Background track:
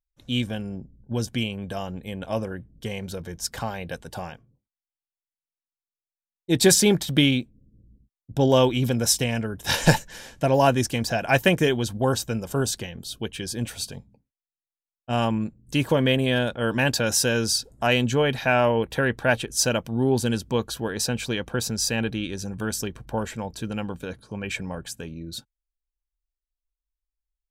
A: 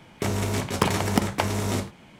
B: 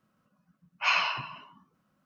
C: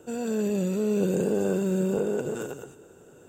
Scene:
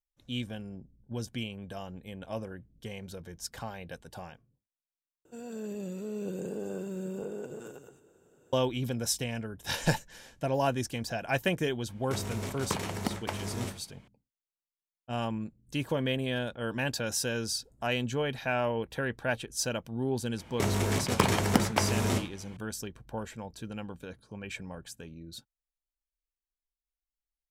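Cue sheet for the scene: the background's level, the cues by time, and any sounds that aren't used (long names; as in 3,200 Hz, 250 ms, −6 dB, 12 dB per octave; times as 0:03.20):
background track −9.5 dB
0:05.25: overwrite with C −11.5 dB
0:11.89: mix in A −10.5 dB
0:20.38: mix in A −2.5 dB
not used: B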